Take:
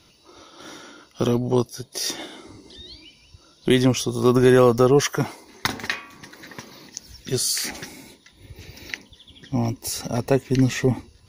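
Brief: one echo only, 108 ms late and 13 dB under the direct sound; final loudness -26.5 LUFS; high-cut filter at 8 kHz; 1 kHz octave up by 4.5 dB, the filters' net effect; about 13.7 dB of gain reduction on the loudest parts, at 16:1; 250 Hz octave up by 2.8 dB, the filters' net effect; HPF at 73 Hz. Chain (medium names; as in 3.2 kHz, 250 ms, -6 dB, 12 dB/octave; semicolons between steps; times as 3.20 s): high-pass 73 Hz; low-pass 8 kHz; peaking EQ 250 Hz +3 dB; peaking EQ 1 kHz +5.5 dB; compression 16:1, threshold -22 dBFS; delay 108 ms -13 dB; trim +3.5 dB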